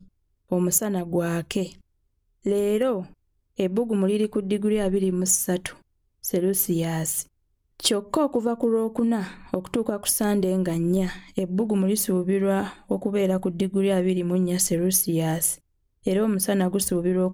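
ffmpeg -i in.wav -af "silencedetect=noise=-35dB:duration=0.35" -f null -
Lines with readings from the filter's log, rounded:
silence_start: 0.00
silence_end: 0.52 | silence_duration: 0.52
silence_start: 1.72
silence_end: 2.46 | silence_duration: 0.74
silence_start: 3.06
silence_end: 3.59 | silence_duration: 0.53
silence_start: 5.72
silence_end: 6.24 | silence_duration: 0.52
silence_start: 7.22
silence_end: 7.80 | silence_duration: 0.57
silence_start: 15.55
silence_end: 16.06 | silence_duration: 0.51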